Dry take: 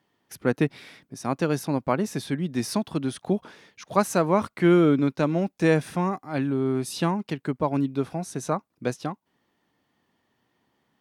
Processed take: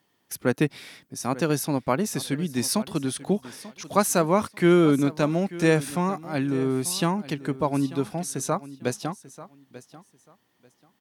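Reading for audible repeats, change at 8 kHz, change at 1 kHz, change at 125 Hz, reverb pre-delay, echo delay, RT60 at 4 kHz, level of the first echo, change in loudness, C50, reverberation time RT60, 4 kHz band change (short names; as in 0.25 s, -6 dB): 2, +8.0 dB, +0.5 dB, 0.0 dB, none, 0.89 s, none, -17.0 dB, +0.5 dB, none, none, +4.5 dB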